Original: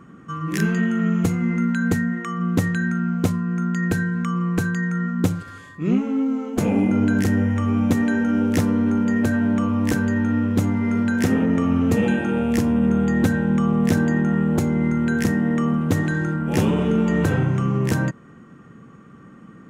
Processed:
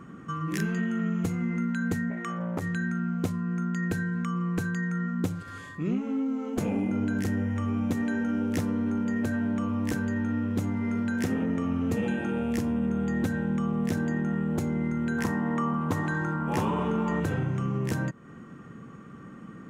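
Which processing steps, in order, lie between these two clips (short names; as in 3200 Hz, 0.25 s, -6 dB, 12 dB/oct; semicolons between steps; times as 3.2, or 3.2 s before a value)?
15.18–17.2 bell 1000 Hz +14 dB 0.78 oct; compressor 2:1, threshold -32 dBFS, peak gain reduction 10.5 dB; 2.1–2.62 core saturation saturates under 650 Hz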